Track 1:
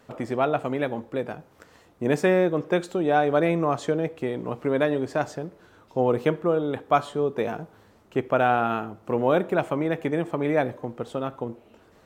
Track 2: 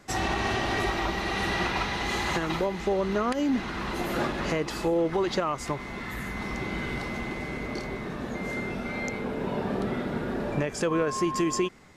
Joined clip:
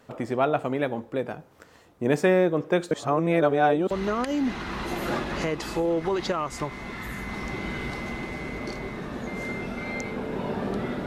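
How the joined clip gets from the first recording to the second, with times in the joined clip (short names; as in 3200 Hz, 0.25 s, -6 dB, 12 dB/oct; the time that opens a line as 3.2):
track 1
2.91–3.91 reverse
3.91 switch to track 2 from 2.99 s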